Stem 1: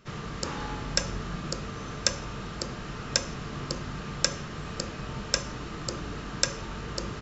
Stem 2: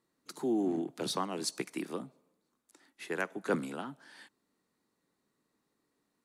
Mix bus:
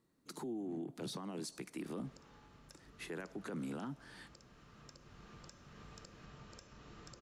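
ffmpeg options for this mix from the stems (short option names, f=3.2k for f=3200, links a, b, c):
-filter_complex "[0:a]acompressor=threshold=-36dB:ratio=6,adelay=1250,volume=-16dB,asplit=2[a][b];[b]volume=-5.5dB[c];[1:a]lowshelf=f=250:g=12,alimiter=limit=-23.5dB:level=0:latency=1:release=333,volume=-2dB,asplit=2[d][e];[e]apad=whole_len=373133[f];[a][f]sidechaincompress=threshold=-55dB:ratio=8:attack=16:release=1060[g];[c]aecho=0:1:484:1[h];[g][d][h]amix=inputs=3:normalize=0,alimiter=level_in=11dB:limit=-24dB:level=0:latency=1:release=32,volume=-11dB"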